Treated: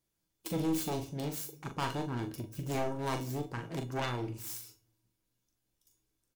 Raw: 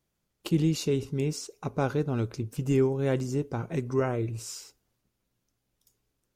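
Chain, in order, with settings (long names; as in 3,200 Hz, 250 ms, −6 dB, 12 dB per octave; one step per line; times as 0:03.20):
phase distortion by the signal itself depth 0.93 ms
high-shelf EQ 4,400 Hz +6.5 dB
tuned comb filter 320 Hz, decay 0.27 s, harmonics odd, mix 80%
in parallel at −9 dB: sine wavefolder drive 8 dB, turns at −23.5 dBFS
on the sum: double-tracking delay 41 ms −7 dB
on a send at −15 dB: convolution reverb RT60 0.65 s, pre-delay 15 ms
on the sum: level −2 dB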